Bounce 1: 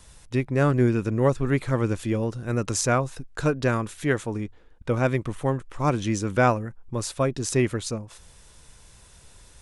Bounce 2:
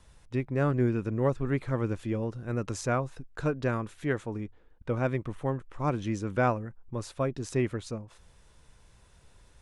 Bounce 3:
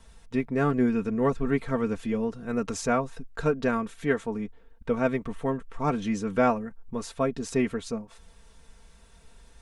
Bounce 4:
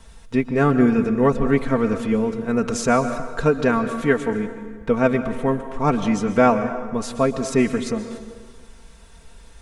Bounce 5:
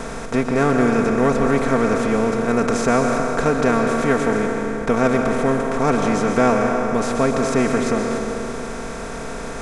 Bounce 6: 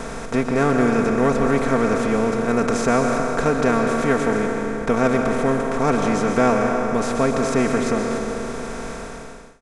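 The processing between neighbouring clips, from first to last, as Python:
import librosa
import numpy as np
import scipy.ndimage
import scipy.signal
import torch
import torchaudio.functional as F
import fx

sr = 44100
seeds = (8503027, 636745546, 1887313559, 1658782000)

y1 = fx.high_shelf(x, sr, hz=4200.0, db=-11.0)
y1 = y1 * librosa.db_to_amplitude(-5.5)
y2 = y1 + 0.75 * np.pad(y1, (int(4.4 * sr / 1000.0), 0))[:len(y1)]
y2 = y2 * librosa.db_to_amplitude(2.0)
y3 = fx.rev_plate(y2, sr, seeds[0], rt60_s=1.6, hf_ratio=0.7, predelay_ms=110, drr_db=9.5)
y3 = y3 * librosa.db_to_amplitude(7.0)
y4 = fx.bin_compress(y3, sr, power=0.4)
y4 = y4 * librosa.db_to_amplitude(-4.5)
y5 = fx.fade_out_tail(y4, sr, length_s=0.71)
y5 = y5 * librosa.db_to_amplitude(-1.0)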